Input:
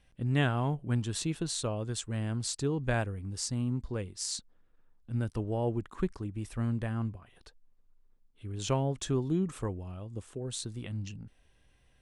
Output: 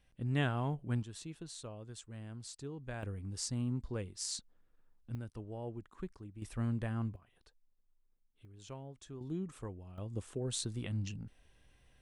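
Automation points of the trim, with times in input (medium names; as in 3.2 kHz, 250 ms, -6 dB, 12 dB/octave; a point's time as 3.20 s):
-5 dB
from 1.03 s -13.5 dB
from 3.03 s -4 dB
from 5.15 s -12 dB
from 6.42 s -3.5 dB
from 7.16 s -10.5 dB
from 8.45 s -18 dB
from 9.21 s -9.5 dB
from 9.98 s 0 dB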